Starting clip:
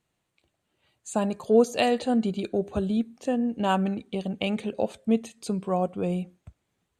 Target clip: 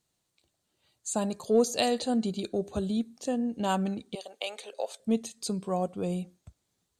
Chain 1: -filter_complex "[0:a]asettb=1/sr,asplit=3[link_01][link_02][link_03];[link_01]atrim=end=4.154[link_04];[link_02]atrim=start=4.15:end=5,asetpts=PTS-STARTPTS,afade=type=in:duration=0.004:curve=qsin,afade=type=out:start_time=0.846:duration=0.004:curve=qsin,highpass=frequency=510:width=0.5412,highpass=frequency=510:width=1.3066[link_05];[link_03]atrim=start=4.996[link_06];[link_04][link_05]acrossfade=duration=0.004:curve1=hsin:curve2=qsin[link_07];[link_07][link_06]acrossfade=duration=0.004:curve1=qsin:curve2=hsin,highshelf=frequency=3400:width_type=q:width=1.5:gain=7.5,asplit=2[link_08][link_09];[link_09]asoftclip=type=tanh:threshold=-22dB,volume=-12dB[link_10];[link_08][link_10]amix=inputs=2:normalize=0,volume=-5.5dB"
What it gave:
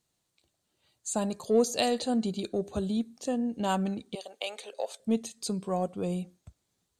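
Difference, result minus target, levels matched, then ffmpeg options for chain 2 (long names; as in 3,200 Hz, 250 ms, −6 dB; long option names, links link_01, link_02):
soft clipping: distortion +7 dB
-filter_complex "[0:a]asettb=1/sr,asplit=3[link_01][link_02][link_03];[link_01]atrim=end=4.154[link_04];[link_02]atrim=start=4.15:end=5,asetpts=PTS-STARTPTS,afade=type=in:duration=0.004:curve=qsin,afade=type=out:start_time=0.846:duration=0.004:curve=qsin,highpass=frequency=510:width=0.5412,highpass=frequency=510:width=1.3066[link_05];[link_03]atrim=start=4.996[link_06];[link_04][link_05]acrossfade=duration=0.004:curve1=hsin:curve2=qsin[link_07];[link_07][link_06]acrossfade=duration=0.004:curve1=qsin:curve2=hsin,highshelf=frequency=3400:width_type=q:width=1.5:gain=7.5,asplit=2[link_08][link_09];[link_09]asoftclip=type=tanh:threshold=-14.5dB,volume=-12dB[link_10];[link_08][link_10]amix=inputs=2:normalize=0,volume=-5.5dB"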